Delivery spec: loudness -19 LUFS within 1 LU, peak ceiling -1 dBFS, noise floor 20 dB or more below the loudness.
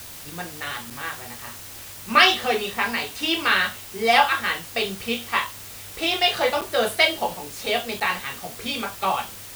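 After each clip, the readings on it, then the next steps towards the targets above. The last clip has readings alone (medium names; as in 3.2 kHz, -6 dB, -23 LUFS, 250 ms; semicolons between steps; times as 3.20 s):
dropouts 3; longest dropout 6.9 ms; noise floor -40 dBFS; noise floor target -43 dBFS; loudness -22.5 LUFS; peak level -2.0 dBFS; loudness target -19.0 LUFS
-> interpolate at 0.90/6.61/8.00 s, 6.9 ms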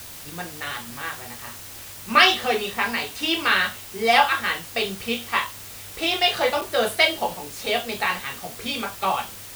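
dropouts 0; noise floor -40 dBFS; noise floor target -43 dBFS
-> noise reduction 6 dB, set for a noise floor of -40 dBFS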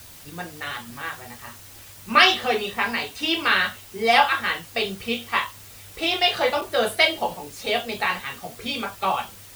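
noise floor -45 dBFS; loudness -22.5 LUFS; peak level -2.0 dBFS; loudness target -19.0 LUFS
-> trim +3.5 dB; peak limiter -1 dBFS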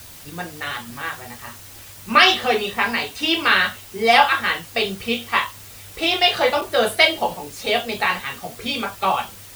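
loudness -19.5 LUFS; peak level -1.0 dBFS; noise floor -41 dBFS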